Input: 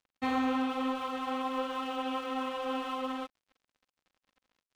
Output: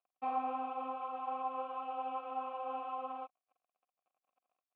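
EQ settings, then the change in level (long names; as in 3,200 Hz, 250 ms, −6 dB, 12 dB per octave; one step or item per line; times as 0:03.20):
formant filter a
high-frequency loss of the air 260 metres
high-shelf EQ 3,000 Hz −7.5 dB
+6.0 dB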